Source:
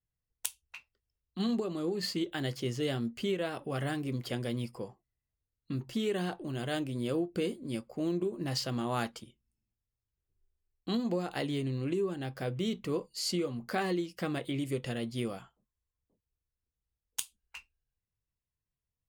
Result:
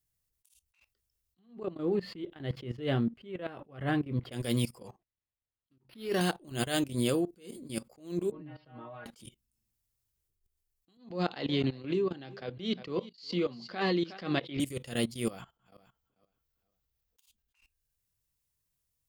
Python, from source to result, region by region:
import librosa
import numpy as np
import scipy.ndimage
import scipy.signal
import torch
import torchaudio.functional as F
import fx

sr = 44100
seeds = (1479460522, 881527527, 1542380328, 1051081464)

y = fx.chain(x, sr, fx.block_float(bits=7),
    fx.air_absorb(metres=470.0), at=(1.39, 4.32))
y = fx.chain(y, sr, fx.bessel_lowpass(hz=8700.0, order=2),
    fx.low_shelf(hz=130.0, db=-7.0),
    fx.resample_linear(factor=6), at=(4.87, 6.21))
y = fx.chain(y, sr, fx.gaussian_blur(sigma=3.9),
    fx.stiff_resonator(f0_hz=150.0, decay_s=0.31, stiffness=0.002),
    fx.band_squash(depth_pct=70), at=(8.31, 9.06))
y = fx.chain(y, sr, fx.ellip_bandpass(low_hz=150.0, high_hz=4400.0, order=3, stop_db=40),
    fx.echo_single(ms=362, db=-19.5), at=(10.97, 14.6))
y = fx.chain(y, sr, fx.reverse_delay_fb(ms=235, feedback_pct=42, wet_db=-13),
    fx.peak_eq(hz=9500.0, db=-14.0, octaves=1.0), at=(15.3, 17.56))
y = fx.high_shelf(y, sr, hz=4600.0, db=12.0)
y = fx.level_steps(y, sr, step_db=18)
y = fx.attack_slew(y, sr, db_per_s=150.0)
y = F.gain(torch.from_numpy(y), 8.5).numpy()